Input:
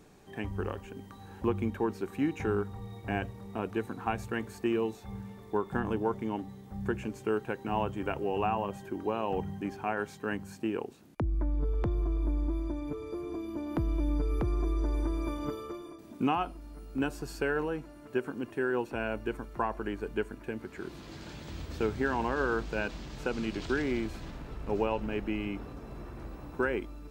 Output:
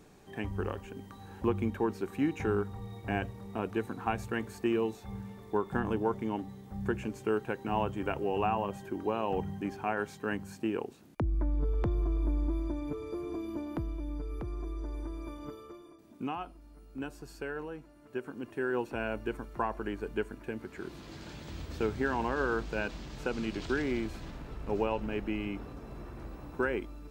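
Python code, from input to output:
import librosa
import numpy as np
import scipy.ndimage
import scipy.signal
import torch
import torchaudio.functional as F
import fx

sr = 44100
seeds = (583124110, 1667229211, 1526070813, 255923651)

y = fx.gain(x, sr, db=fx.line((13.55, 0.0), (13.98, -8.0), (17.94, -8.0), (18.78, -1.0)))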